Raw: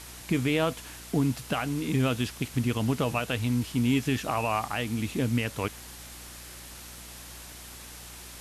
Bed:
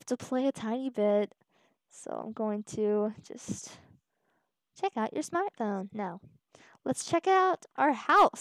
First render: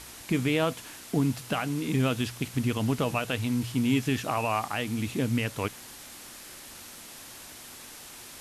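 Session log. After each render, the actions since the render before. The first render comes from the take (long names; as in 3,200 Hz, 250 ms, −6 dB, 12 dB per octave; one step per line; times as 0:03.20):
hum removal 60 Hz, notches 3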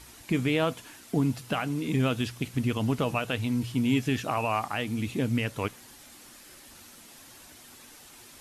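broadband denoise 7 dB, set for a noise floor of −46 dBFS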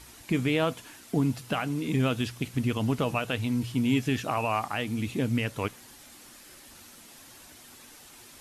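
no processing that can be heard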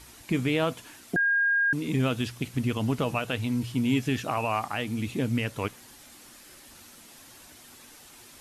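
0:01.16–0:01.73: beep over 1,620 Hz −20.5 dBFS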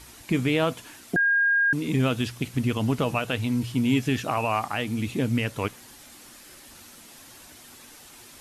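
level +2.5 dB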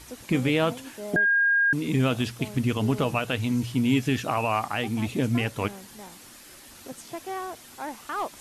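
mix in bed −9.5 dB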